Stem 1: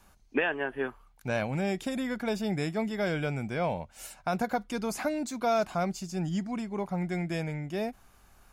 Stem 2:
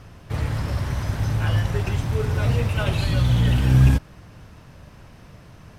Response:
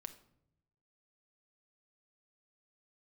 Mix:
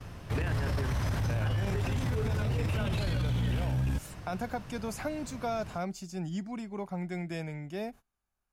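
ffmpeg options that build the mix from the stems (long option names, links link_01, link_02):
-filter_complex "[0:a]volume=-5dB,asplit=2[link_01][link_02];[link_02]volume=-18.5dB[link_03];[1:a]acompressor=threshold=-19dB:ratio=6,volume=0dB[link_04];[2:a]atrim=start_sample=2205[link_05];[link_03][link_05]afir=irnorm=-1:irlink=0[link_06];[link_01][link_04][link_06]amix=inputs=3:normalize=0,acrossover=split=370[link_07][link_08];[link_08]acompressor=threshold=-30dB:ratio=6[link_09];[link_07][link_09]amix=inputs=2:normalize=0,agate=range=-23dB:threshold=-49dB:ratio=16:detection=peak,alimiter=limit=-23.5dB:level=0:latency=1:release=18"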